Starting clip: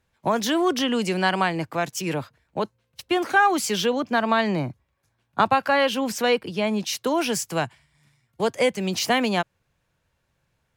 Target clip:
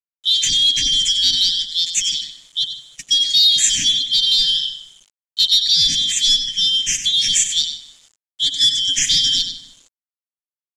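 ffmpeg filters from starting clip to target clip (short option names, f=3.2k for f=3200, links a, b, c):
-filter_complex "[0:a]afftfilt=real='real(if(lt(b,272),68*(eq(floor(b/68),0)*2+eq(floor(b/68),1)*3+eq(floor(b/68),2)*0+eq(floor(b/68),3)*1)+mod(b,68),b),0)':imag='imag(if(lt(b,272),68*(eq(floor(b/68),0)*2+eq(floor(b/68),1)*3+eq(floor(b/68),2)*0+eq(floor(b/68),3)*1)+mod(b,68),b),0)':win_size=2048:overlap=0.75,equalizer=f=93:w=0.39:g=-9.5,aecho=1:1:7:0.5,asplit=2[a][b];[b]aecho=0:1:95|190:0.316|0.0474[c];[a][c]amix=inputs=2:normalize=0,acontrast=62,lowshelf=f=190:g=6,asplit=2[d][e];[e]adelay=154,lowpass=f=2.7k:p=1,volume=-12.5dB,asplit=2[f][g];[g]adelay=154,lowpass=f=2.7k:p=1,volume=0.39,asplit=2[h][i];[i]adelay=154,lowpass=f=2.7k:p=1,volume=0.39,asplit=2[j][k];[k]adelay=154,lowpass=f=2.7k:p=1,volume=0.39[l];[f][h][j][l]amix=inputs=4:normalize=0[m];[d][m]amix=inputs=2:normalize=0,asoftclip=type=tanh:threshold=-4.5dB,asuperstop=centerf=700:order=20:qfactor=0.5,bandreject=f=64.29:t=h:w=4,bandreject=f=128.58:t=h:w=4,bandreject=f=192.87:t=h:w=4,bandreject=f=257.16:t=h:w=4,bandreject=f=321.45:t=h:w=4,bandreject=f=385.74:t=h:w=4,bandreject=f=450.03:t=h:w=4,bandreject=f=514.32:t=h:w=4,bandreject=f=578.61:t=h:w=4,bandreject=f=642.9:t=h:w=4,acrusher=bits=7:mix=0:aa=0.000001,lowpass=f=7.2k:t=q:w=4.9,volume=-3.5dB"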